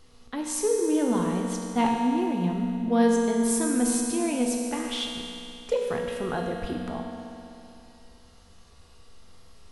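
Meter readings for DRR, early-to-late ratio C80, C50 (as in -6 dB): -0.5 dB, 2.0 dB, 1.0 dB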